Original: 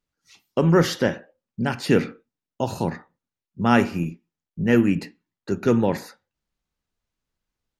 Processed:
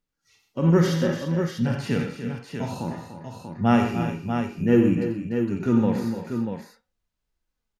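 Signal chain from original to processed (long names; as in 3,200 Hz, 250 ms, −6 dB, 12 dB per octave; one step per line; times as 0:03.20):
phase shifter 0.58 Hz, delay 5 ms, feedback 29%
harmonic and percussive parts rebalanced percussive −16 dB
multi-tap delay 89/125/295/339/640 ms −9/−12/−10.5/−14.5/−7 dB
level +1.5 dB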